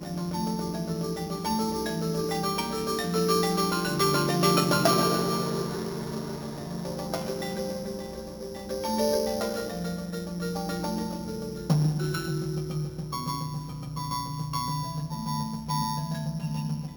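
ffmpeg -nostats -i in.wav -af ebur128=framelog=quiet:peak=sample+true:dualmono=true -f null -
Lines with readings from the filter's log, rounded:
Integrated loudness:
  I:         -25.9 LUFS
  Threshold: -35.8 LUFS
Loudness range:
  LRA:         7.5 LU
  Threshold: -45.6 LUFS
  LRA low:   -29.1 LUFS
  LRA high:  -21.6 LUFS
Sample peak:
  Peak:       -8.8 dBFS
True peak:
  Peak:       -8.0 dBFS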